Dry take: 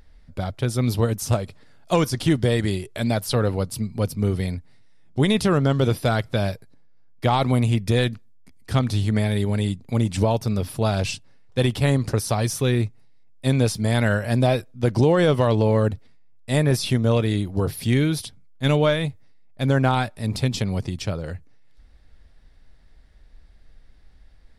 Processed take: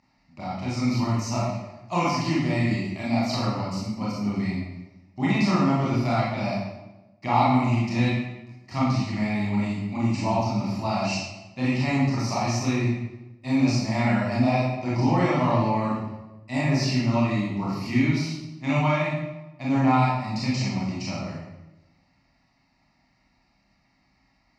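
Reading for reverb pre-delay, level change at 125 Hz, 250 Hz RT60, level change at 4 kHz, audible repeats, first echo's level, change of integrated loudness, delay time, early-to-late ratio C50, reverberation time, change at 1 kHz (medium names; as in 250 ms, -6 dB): 23 ms, -4.5 dB, 1.2 s, -4.5 dB, no echo, no echo, -2.5 dB, no echo, -1.0 dB, 1.1 s, +2.5 dB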